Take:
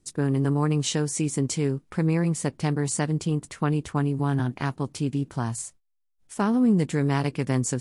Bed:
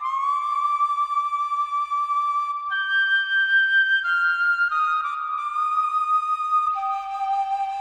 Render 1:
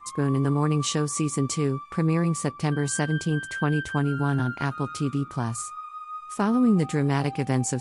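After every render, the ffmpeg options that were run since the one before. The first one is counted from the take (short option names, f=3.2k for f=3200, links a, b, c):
-filter_complex "[1:a]volume=-16dB[a];[0:a][a]amix=inputs=2:normalize=0"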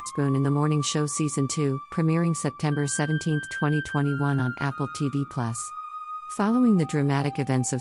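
-af "acompressor=mode=upward:threshold=-32dB:ratio=2.5"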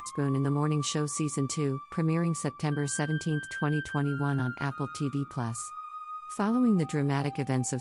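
-af "volume=-4.5dB"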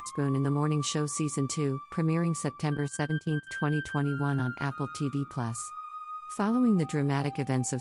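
-filter_complex "[0:a]asettb=1/sr,asplit=3[a][b][c];[a]atrim=end=2.774[d];[b]atrim=start=2.77:end=3.47,asetpts=PTS-STARTPTS,afade=t=in:d=0.004:c=qsin,afade=t=out:st=0.696:d=0.004:c=qsin,agate=range=-15dB:threshold=-32dB:ratio=16:release=100:detection=peak[e];[c]atrim=start=3.466[f];[d][e]acrossfade=d=0.004:c1=hsin:c2=qsin[g];[g][f]acrossfade=d=0.004:c1=qsin:c2=hsin"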